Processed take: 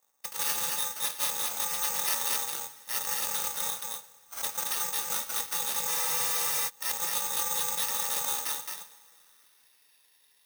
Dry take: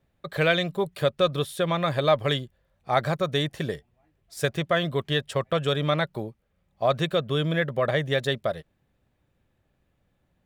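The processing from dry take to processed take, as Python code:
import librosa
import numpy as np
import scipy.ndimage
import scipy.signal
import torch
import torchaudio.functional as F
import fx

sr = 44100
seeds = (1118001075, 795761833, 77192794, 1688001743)

p1 = fx.bit_reversed(x, sr, seeds[0], block=128)
p2 = fx.high_shelf(p1, sr, hz=7800.0, db=12.0)
p3 = fx.rev_double_slope(p2, sr, seeds[1], early_s=0.57, late_s=3.1, knee_db=-18, drr_db=11.5)
p4 = fx.filter_sweep_bandpass(p3, sr, from_hz=970.0, to_hz=3200.0, start_s=8.94, end_s=10.06, q=1.9)
p5 = fx.over_compress(p4, sr, threshold_db=-48.0, ratio=-1.0)
p6 = p4 + F.gain(torch.from_numpy(p5), -2.5).numpy()
p7 = fx.highpass(p6, sr, hz=390.0, slope=6)
p8 = p7 + fx.echo_single(p7, sr, ms=221, db=-3.0, dry=0)
p9 = (np.kron(p8[::6], np.eye(6)[0]) * 6)[:len(p8)]
y = fx.spec_freeze(p9, sr, seeds[2], at_s=5.89, hold_s=0.79)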